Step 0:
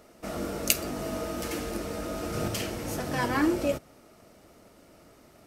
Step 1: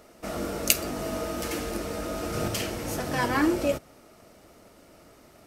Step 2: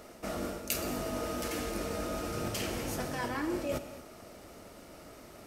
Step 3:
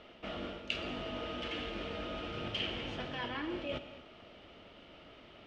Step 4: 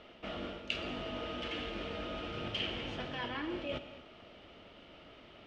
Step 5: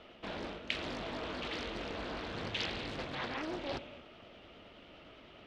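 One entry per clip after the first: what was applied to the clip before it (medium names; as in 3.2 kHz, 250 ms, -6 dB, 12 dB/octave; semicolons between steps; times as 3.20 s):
peaking EQ 170 Hz -2 dB 2.3 oct; trim +2.5 dB
reverse; compression 6:1, threshold -35 dBFS, peak gain reduction 19 dB; reverse; gated-style reverb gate 270 ms flat, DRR 9.5 dB; trim +2.5 dB
four-pole ladder low-pass 3.4 kHz, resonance 70%; trim +6 dB
no audible change
vibrato 9.7 Hz 56 cents; loudspeaker Doppler distortion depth 0.91 ms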